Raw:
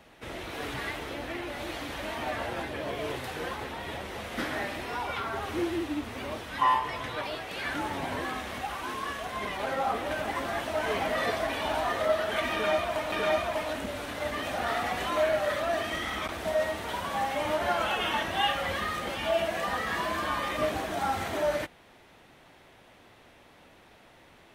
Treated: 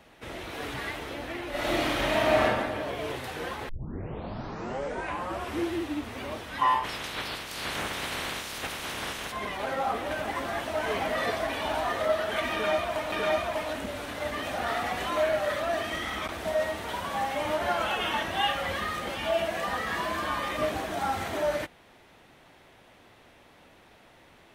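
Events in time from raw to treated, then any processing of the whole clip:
1.50–2.43 s: reverb throw, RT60 1.3 s, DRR -9 dB
3.69 s: tape start 1.96 s
6.83–9.31 s: spectral peaks clipped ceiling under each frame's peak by 21 dB

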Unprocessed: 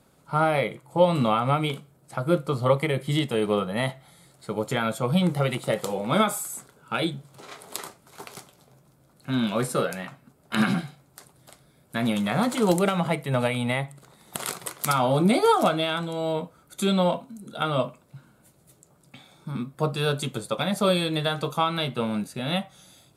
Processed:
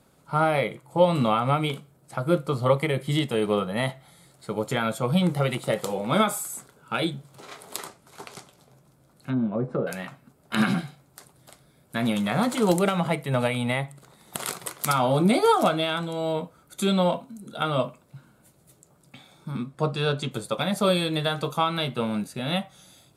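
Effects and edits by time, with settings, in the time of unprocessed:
7.84–9.87 s: low-pass that closes with the level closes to 580 Hz, closed at -22 dBFS
19.57–20.30 s: low-pass 11 kHz -> 4.9 kHz

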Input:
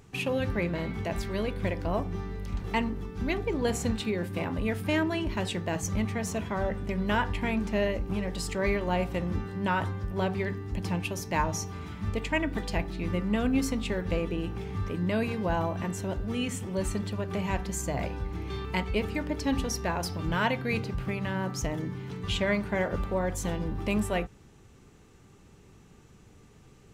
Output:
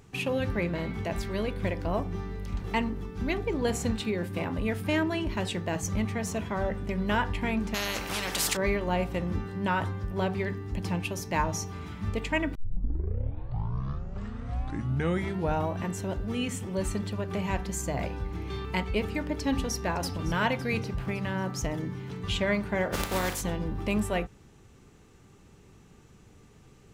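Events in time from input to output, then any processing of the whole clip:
7.74–8.57 s: spectrum-flattening compressor 4:1
12.55 s: tape start 3.23 s
19.26–20.18 s: echo throw 560 ms, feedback 45%, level -15 dB
22.92–23.40 s: spectral contrast reduction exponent 0.46

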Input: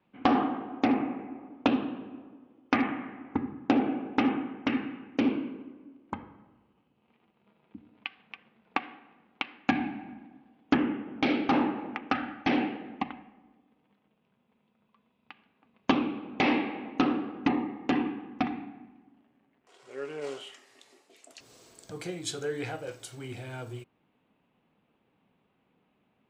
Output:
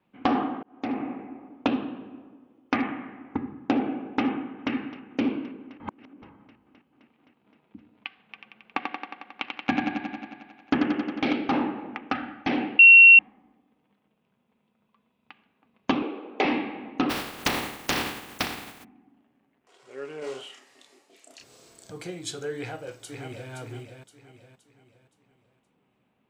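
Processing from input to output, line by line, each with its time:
0.63–1.10 s: fade in
4.32–4.73 s: echo throw 260 ms, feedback 80%, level -15.5 dB
5.80–6.22 s: reverse
8.20–11.33 s: thinning echo 90 ms, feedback 73%, high-pass 160 Hz, level -4 dB
12.79–13.19 s: bleep 2.73 kHz -7.5 dBFS
16.02–16.45 s: resonant high-pass 430 Hz, resonance Q 2.4
17.09–18.83 s: spectral contrast reduction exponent 0.28
20.19–21.92 s: doubling 31 ms -3 dB
22.57–23.51 s: echo throw 520 ms, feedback 40%, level -6 dB

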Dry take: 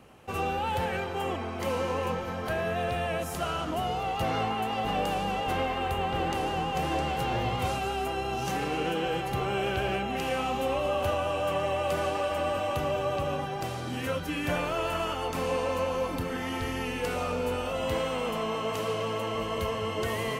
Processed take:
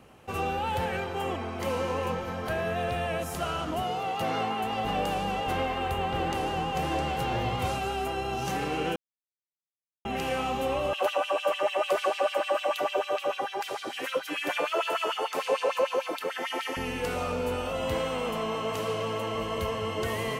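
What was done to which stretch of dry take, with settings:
3.83–4.64 s: high-pass 150 Hz
8.96–10.05 s: mute
10.93–16.77 s: LFO high-pass sine 6.7 Hz 370–3400 Hz

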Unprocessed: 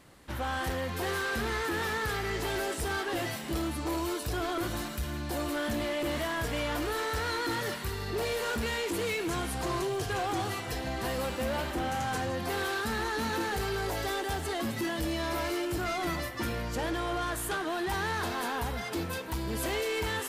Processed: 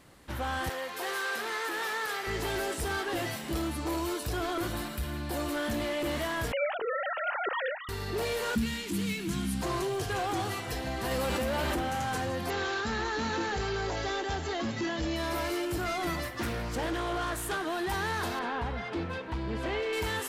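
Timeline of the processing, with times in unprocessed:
0.69–2.27 s: high-pass 480 Hz
4.71–5.34 s: peaking EQ 6.3 kHz -6 dB 0.43 oct
6.52–7.89 s: formants replaced by sine waves
8.55–9.62 s: FFT filter 130 Hz 0 dB, 190 Hz +13 dB, 510 Hz -15 dB, 3.1 kHz -1 dB
11.11–11.80 s: level flattener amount 100%
12.50–15.16 s: brick-wall FIR low-pass 7.5 kHz
16.24–17.53 s: loudspeaker Doppler distortion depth 0.26 ms
18.39–19.93 s: low-pass 3.1 kHz

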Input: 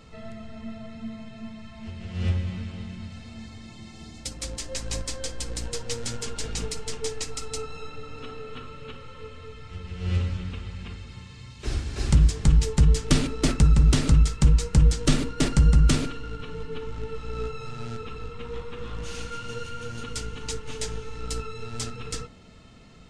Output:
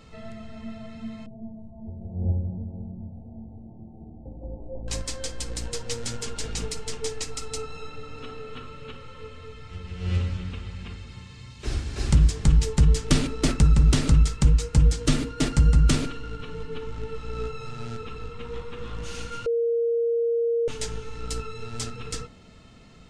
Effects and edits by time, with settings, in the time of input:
1.26–4.88 s: steep low-pass 850 Hz 72 dB/octave
14.43–15.88 s: comb of notches 190 Hz
19.46–20.68 s: bleep 466 Hz -20.5 dBFS

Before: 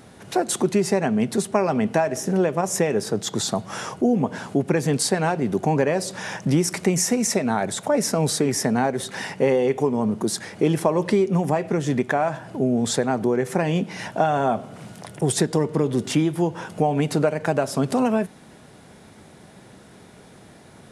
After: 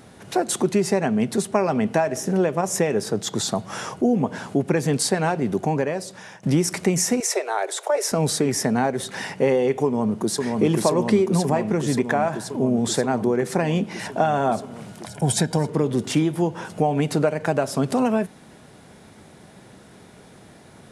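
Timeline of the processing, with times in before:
5.49–6.43 s: fade out, to -15 dB
7.20–8.12 s: steep high-pass 350 Hz 72 dB/octave
9.85–10.40 s: echo throw 530 ms, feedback 80%, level -2.5 dB
15.06–15.69 s: comb 1.3 ms, depth 58%

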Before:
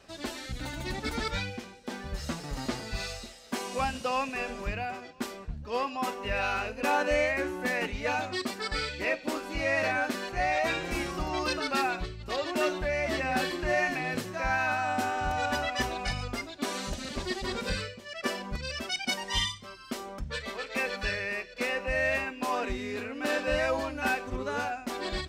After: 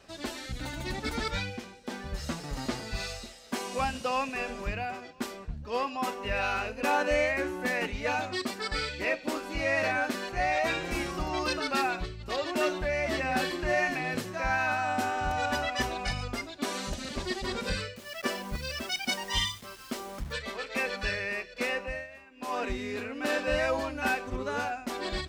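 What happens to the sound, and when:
17.96–20.33 s: word length cut 8-bit, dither none
21.74–22.63 s: dip -20 dB, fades 0.33 s

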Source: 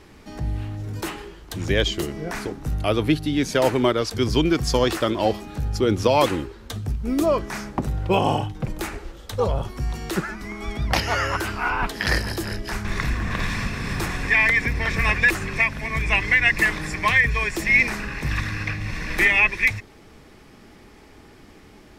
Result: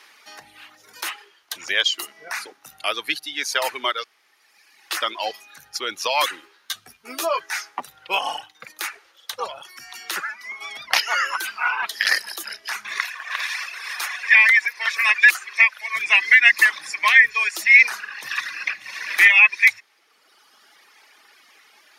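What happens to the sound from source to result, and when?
4.04–4.91 s: room tone
6.42–7.83 s: doubling 12 ms -2 dB
12.99–15.96 s: high-pass 600 Hz
whole clip: reverb removal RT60 1.5 s; high-pass 1.3 kHz 12 dB/octave; band-stop 7.7 kHz, Q 6.1; trim +6.5 dB

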